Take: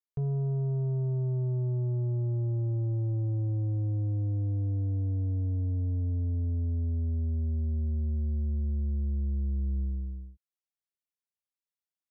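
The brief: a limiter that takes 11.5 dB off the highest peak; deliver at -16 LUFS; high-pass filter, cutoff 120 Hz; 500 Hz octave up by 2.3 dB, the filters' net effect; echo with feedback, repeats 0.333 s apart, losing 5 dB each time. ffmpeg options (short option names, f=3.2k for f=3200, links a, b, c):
-af "highpass=120,equalizer=f=500:t=o:g=3.5,alimiter=level_in=12dB:limit=-24dB:level=0:latency=1,volume=-12dB,aecho=1:1:333|666|999|1332|1665|1998|2331:0.562|0.315|0.176|0.0988|0.0553|0.031|0.0173,volume=26dB"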